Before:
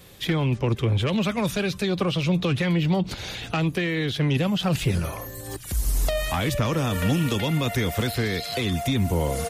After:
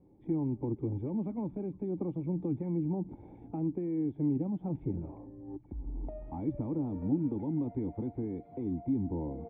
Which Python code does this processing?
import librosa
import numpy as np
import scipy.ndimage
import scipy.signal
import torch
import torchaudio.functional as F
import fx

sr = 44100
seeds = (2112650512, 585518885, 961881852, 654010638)

y = fx.formant_cascade(x, sr, vowel='u')